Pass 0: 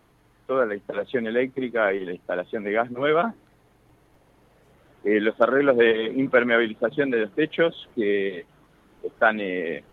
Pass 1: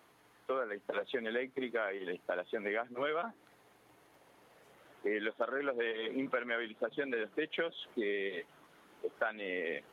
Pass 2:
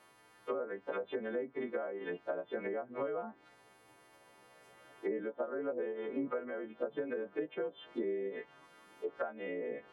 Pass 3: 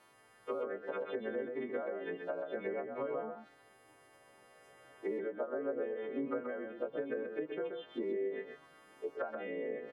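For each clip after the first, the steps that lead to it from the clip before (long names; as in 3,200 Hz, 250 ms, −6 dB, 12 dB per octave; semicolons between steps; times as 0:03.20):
high-pass filter 580 Hz 6 dB per octave; downward compressor 8 to 1, threshold −32 dBFS, peak gain reduction 17.5 dB
every partial snapped to a pitch grid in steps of 2 semitones; treble cut that deepens with the level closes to 690 Hz, closed at −31.5 dBFS; high-shelf EQ 3,300 Hz −9.5 dB; level +1 dB
single-tap delay 130 ms −5.5 dB; level −1.5 dB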